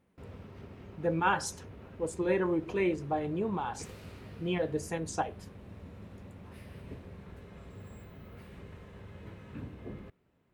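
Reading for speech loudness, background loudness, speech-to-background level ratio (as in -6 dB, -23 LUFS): -32.5 LUFS, -48.5 LUFS, 16.0 dB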